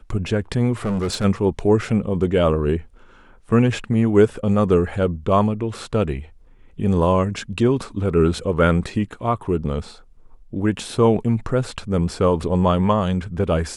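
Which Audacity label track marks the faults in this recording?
0.850000	1.250000	clipped -19 dBFS

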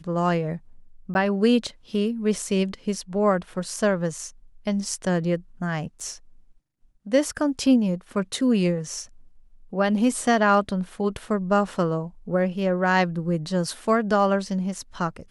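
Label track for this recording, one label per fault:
1.140000	1.150000	dropout
6.000000	6.010000	dropout 5.1 ms

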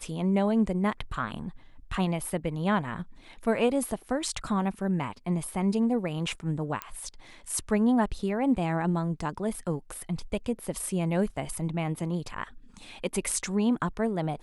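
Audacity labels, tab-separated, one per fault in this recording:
6.820000	6.820000	pop -15 dBFS

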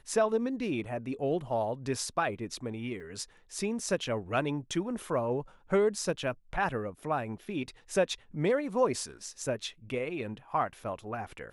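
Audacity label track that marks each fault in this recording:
3.000000	3.000000	dropout 4.6 ms

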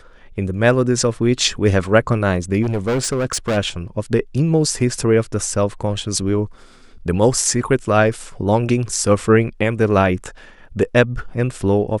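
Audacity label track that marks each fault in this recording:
2.620000	3.580000	clipped -15.5 dBFS

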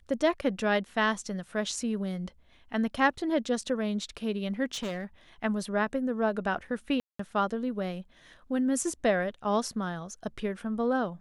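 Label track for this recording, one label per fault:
4.740000	5.040000	clipped -30 dBFS
7.000000	7.190000	dropout 194 ms

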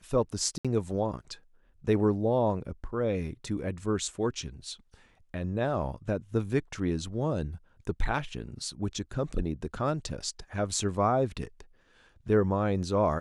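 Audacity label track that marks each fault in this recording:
0.580000	0.650000	dropout 66 ms

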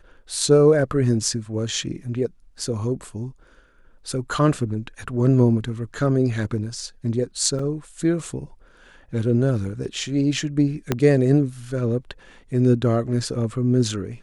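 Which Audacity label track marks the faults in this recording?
7.590000	7.590000	dropout 3.6 ms
10.920000	10.920000	pop -6 dBFS

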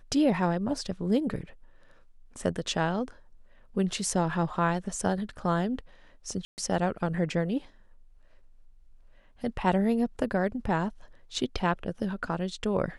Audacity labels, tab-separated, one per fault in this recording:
6.450000	6.580000	dropout 129 ms

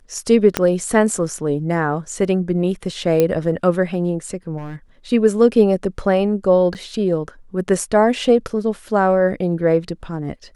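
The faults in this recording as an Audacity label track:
0.570000	0.570000	pop -2 dBFS
3.200000	3.200000	pop -4 dBFS
4.570000	4.760000	clipped -26.5 dBFS
6.740000	6.750000	dropout 8.6 ms

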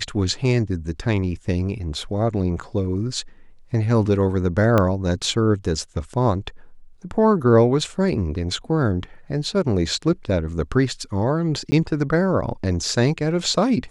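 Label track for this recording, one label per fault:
4.780000	4.780000	pop -6 dBFS
11.710000	11.720000	dropout 10 ms

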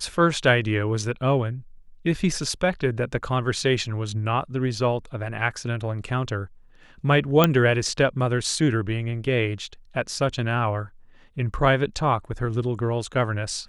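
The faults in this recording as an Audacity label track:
7.440000	7.440000	pop -3 dBFS

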